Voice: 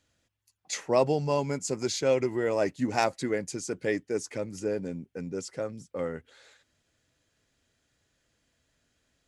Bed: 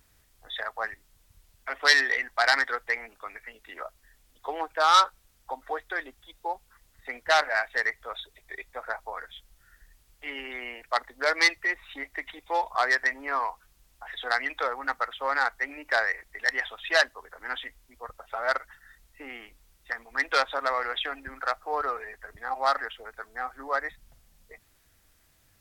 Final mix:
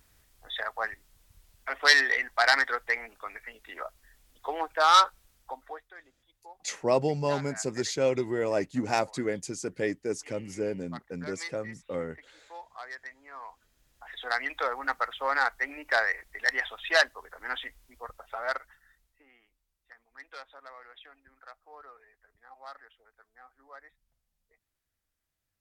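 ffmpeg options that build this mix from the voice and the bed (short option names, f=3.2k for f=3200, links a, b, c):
-filter_complex "[0:a]adelay=5950,volume=-1dB[a];[1:a]volume=17.5dB,afade=t=out:st=5.24:d=0.66:silence=0.125893,afade=t=in:st=13.33:d=1.42:silence=0.133352,afade=t=out:st=17.95:d=1.3:silence=0.0944061[b];[a][b]amix=inputs=2:normalize=0"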